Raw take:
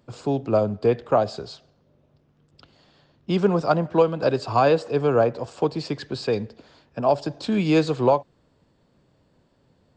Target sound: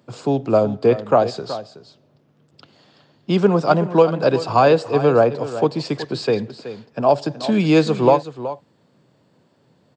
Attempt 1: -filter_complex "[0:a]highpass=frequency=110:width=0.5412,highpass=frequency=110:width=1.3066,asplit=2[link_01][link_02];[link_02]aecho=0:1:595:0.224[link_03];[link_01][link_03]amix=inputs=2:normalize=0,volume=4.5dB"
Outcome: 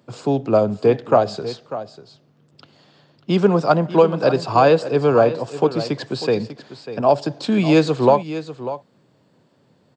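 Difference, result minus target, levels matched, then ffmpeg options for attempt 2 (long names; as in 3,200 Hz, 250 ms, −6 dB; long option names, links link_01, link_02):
echo 221 ms late
-filter_complex "[0:a]highpass=frequency=110:width=0.5412,highpass=frequency=110:width=1.3066,asplit=2[link_01][link_02];[link_02]aecho=0:1:374:0.224[link_03];[link_01][link_03]amix=inputs=2:normalize=0,volume=4.5dB"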